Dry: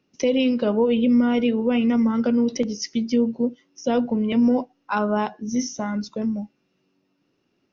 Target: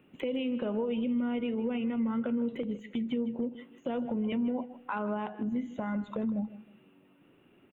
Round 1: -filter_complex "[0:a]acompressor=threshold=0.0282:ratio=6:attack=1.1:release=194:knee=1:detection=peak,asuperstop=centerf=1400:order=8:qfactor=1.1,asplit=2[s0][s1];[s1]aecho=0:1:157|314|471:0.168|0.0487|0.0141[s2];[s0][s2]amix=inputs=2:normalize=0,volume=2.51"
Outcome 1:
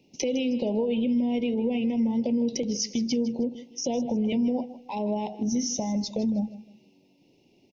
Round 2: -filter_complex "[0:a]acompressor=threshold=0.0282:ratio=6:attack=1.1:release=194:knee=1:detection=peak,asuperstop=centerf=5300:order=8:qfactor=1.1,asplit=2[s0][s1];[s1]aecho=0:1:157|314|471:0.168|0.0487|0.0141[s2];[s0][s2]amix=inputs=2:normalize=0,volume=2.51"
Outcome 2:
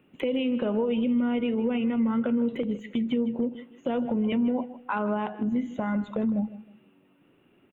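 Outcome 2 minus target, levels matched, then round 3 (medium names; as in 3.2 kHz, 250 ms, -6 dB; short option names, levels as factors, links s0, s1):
compression: peak gain reduction -5.5 dB
-filter_complex "[0:a]acompressor=threshold=0.0133:ratio=6:attack=1.1:release=194:knee=1:detection=peak,asuperstop=centerf=5300:order=8:qfactor=1.1,asplit=2[s0][s1];[s1]aecho=0:1:157|314|471:0.168|0.0487|0.0141[s2];[s0][s2]amix=inputs=2:normalize=0,volume=2.51"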